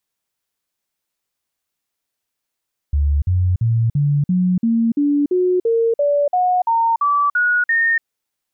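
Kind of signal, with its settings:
stepped sweep 72.2 Hz up, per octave 3, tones 15, 0.29 s, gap 0.05 s −13 dBFS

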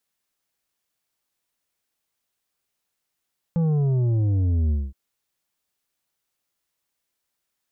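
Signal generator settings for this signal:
bass drop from 170 Hz, over 1.37 s, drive 7.5 dB, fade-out 0.22 s, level −19 dB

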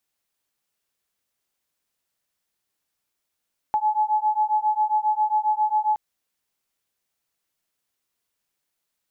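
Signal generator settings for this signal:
two tones that beat 851 Hz, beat 7.4 Hz, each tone −22 dBFS 2.22 s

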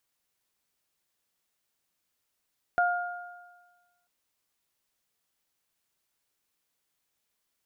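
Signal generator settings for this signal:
harmonic partials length 1.29 s, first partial 708 Hz, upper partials −2 dB, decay 1.34 s, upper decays 1.35 s, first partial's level −21.5 dB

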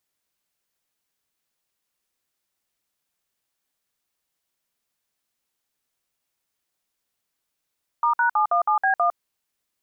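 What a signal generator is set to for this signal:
touch tones "*#717B1", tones 105 ms, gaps 56 ms, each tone −19.5 dBFS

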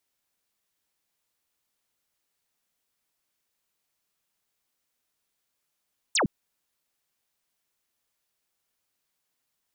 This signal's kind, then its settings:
single falling chirp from 9,200 Hz, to 140 Hz, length 0.11 s sine, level −20.5 dB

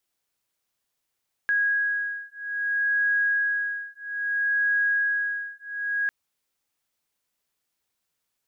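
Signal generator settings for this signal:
two tones that beat 1,650 Hz, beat 0.61 Hz, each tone −25.5 dBFS 4.60 s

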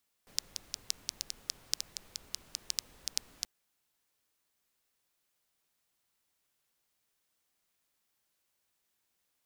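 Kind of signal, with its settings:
rain-like ticks over hiss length 3.18 s, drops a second 6, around 5,200 Hz, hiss −17 dB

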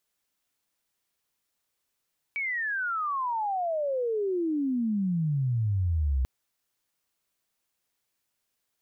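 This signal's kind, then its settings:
glide logarithmic 2,300 Hz → 62 Hz −27.5 dBFS → −22.5 dBFS 3.89 s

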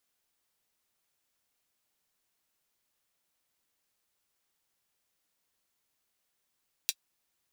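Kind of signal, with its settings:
closed synth hi-hat, high-pass 3,400 Hz, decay 0.06 s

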